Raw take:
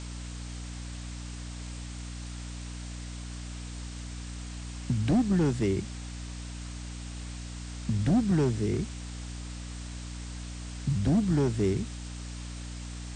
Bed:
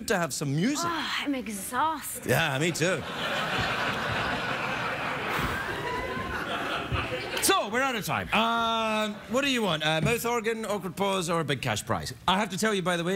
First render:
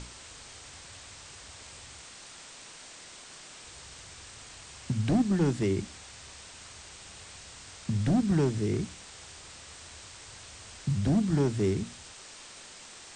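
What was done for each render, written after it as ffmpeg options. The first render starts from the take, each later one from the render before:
-af "bandreject=f=60:t=h:w=6,bandreject=f=120:t=h:w=6,bandreject=f=180:t=h:w=6,bandreject=f=240:t=h:w=6,bandreject=f=300:t=h:w=6"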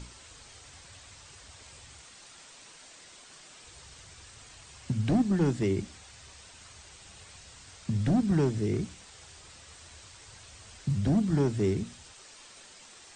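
-af "afftdn=nr=6:nf=-49"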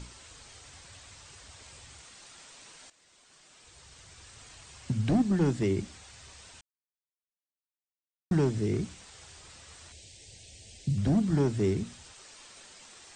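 -filter_complex "[0:a]asettb=1/sr,asplit=3[s0][s1][s2];[s0]atrim=end=9.924[s3];[s1]atrim=start=9.92:end=10.98,asetpts=PTS-STARTPTS,afade=t=in:d=0.004:c=qsin,afade=t=out:st=1.056:d=0.004:c=qsin,asuperstop=centerf=1200:order=4:qfactor=0.74[s4];[s2]atrim=start=10.976[s5];[s3][s4]acrossfade=d=0.004:c1=hsin:c2=qsin[s6];[s6][s5]acrossfade=d=0.004:c1=qsin:c2=hsin,asplit=4[s7][s8][s9][s10];[s7]atrim=end=2.9,asetpts=PTS-STARTPTS,afade=t=out:st=2.896:d=0.004:c=hsin:silence=0.188365[s11];[s8]atrim=start=2.9:end=6.61,asetpts=PTS-STARTPTS,afade=t=in:d=1.57:silence=0.188365,afade=t=out:st=3.706:d=0.004:c=hsin[s12];[s9]atrim=start=6.61:end=8.31,asetpts=PTS-STARTPTS,volume=0[s13];[s10]atrim=start=8.31,asetpts=PTS-STARTPTS,afade=t=in:d=0.004:c=hsin[s14];[s11][s12][s13][s14]concat=n=4:v=0:a=1"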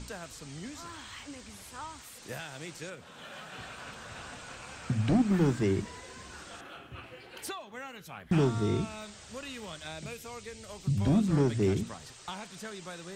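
-filter_complex "[1:a]volume=0.15[s0];[0:a][s0]amix=inputs=2:normalize=0"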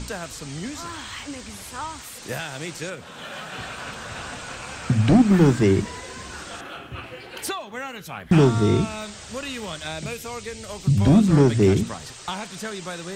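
-af "volume=3.16"

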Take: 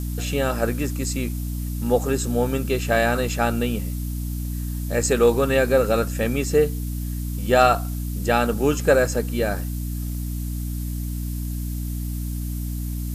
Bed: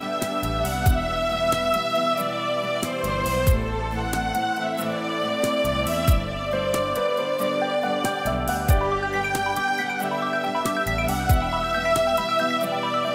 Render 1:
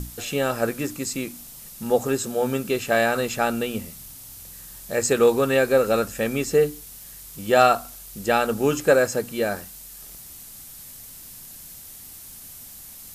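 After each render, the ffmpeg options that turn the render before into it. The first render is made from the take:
-af "bandreject=f=60:t=h:w=6,bandreject=f=120:t=h:w=6,bandreject=f=180:t=h:w=6,bandreject=f=240:t=h:w=6,bandreject=f=300:t=h:w=6"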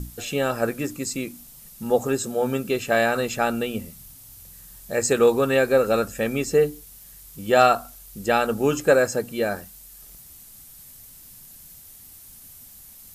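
-af "afftdn=nr=6:nf=-42"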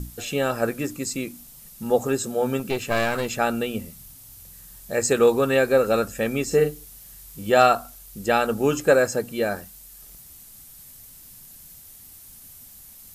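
-filter_complex "[0:a]asettb=1/sr,asplit=3[s0][s1][s2];[s0]atrim=end=2.594[s3];[s1]atrim=start=2.59:end=3.27,asetpts=PTS-STARTPTS,afade=t=in:d=0.004:c=qsin,afade=t=out:st=0.676:d=0.004:c=qsin,aeval=exprs='clip(val(0),-1,0.0398)':c=same[s4];[s2]atrim=start=3.266[s5];[s3][s4]acrossfade=d=0.004:c1=hsin:c2=qsin[s6];[s6][s5]acrossfade=d=0.004:c1=qsin:c2=hsin,asettb=1/sr,asplit=3[s7][s8][s9];[s7]atrim=end=6.474[s10];[s8]atrim=start=6.47:end=7.5,asetpts=PTS-STARTPTS,afade=t=in:d=0.004:c=qsin,afade=t=out:st=1.026:d=0.004:c=qsin,asplit=2[s11][s12];[s12]adelay=39,volume=0.473[s13];[s11][s13]amix=inputs=2:normalize=0,atrim=end_sample=45423[s14];[s9]atrim=start=7.496[s15];[s10][s14]acrossfade=d=0.004:c1=hsin:c2=qsin[s16];[s16][s15]acrossfade=d=0.004:c1=qsin:c2=hsin"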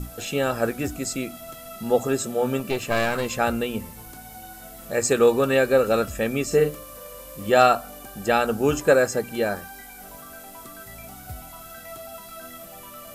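-filter_complex "[1:a]volume=0.112[s0];[0:a][s0]amix=inputs=2:normalize=0"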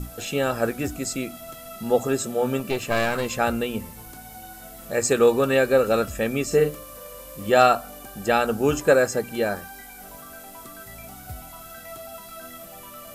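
-af anull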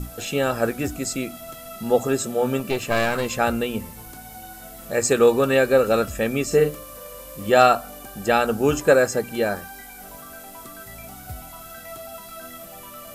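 -af "volume=1.19"

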